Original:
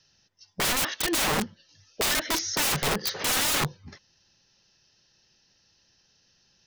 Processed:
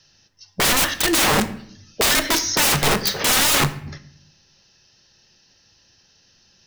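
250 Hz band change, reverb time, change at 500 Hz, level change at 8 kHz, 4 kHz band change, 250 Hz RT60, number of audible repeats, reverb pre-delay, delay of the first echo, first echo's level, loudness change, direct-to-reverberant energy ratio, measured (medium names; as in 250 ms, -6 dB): +8.5 dB, 0.65 s, +8.0 dB, +8.0 dB, +8.0 dB, 1.0 s, no echo, 9 ms, no echo, no echo, +8.0 dB, 9.0 dB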